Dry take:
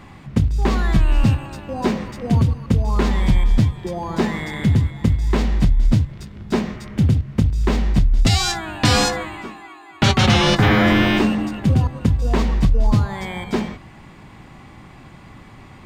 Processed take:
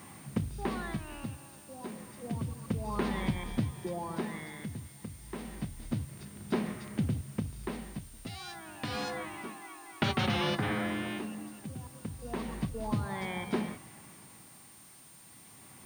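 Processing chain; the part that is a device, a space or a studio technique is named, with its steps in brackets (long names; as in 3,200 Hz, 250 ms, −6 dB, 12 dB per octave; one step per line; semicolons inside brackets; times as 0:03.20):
medium wave at night (band-pass filter 120–4,100 Hz; downward compressor, threshold −18 dBFS, peak gain reduction 7 dB; amplitude tremolo 0.3 Hz, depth 76%; steady tone 9,000 Hz −48 dBFS; white noise bed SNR 22 dB)
level −7.5 dB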